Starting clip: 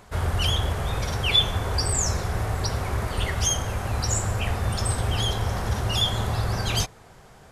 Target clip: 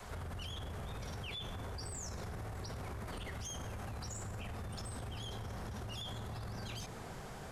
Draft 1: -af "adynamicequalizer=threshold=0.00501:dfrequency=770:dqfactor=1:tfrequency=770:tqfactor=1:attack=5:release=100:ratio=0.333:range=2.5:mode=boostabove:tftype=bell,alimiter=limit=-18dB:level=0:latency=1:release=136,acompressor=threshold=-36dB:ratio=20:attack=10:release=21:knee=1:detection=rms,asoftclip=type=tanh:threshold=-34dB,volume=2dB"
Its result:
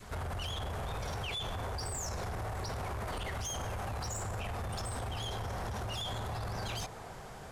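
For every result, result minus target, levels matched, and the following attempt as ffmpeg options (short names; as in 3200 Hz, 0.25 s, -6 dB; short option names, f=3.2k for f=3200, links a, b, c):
compressor: peak gain reduction -8 dB; 1000 Hz band +3.0 dB
-af "adynamicequalizer=threshold=0.00501:dfrequency=770:dqfactor=1:tfrequency=770:tqfactor=1:attack=5:release=100:ratio=0.333:range=2.5:mode=boostabove:tftype=bell,alimiter=limit=-18dB:level=0:latency=1:release=136,acompressor=threshold=-44dB:ratio=20:attack=10:release=21:knee=1:detection=rms,asoftclip=type=tanh:threshold=-34dB,volume=2dB"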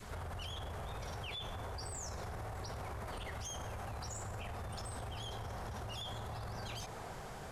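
1000 Hz band +3.5 dB
-af "adynamicequalizer=threshold=0.00501:dfrequency=220:dqfactor=1:tfrequency=220:tqfactor=1:attack=5:release=100:ratio=0.333:range=2.5:mode=boostabove:tftype=bell,alimiter=limit=-18dB:level=0:latency=1:release=136,acompressor=threshold=-44dB:ratio=20:attack=10:release=21:knee=1:detection=rms,asoftclip=type=tanh:threshold=-34dB,volume=2dB"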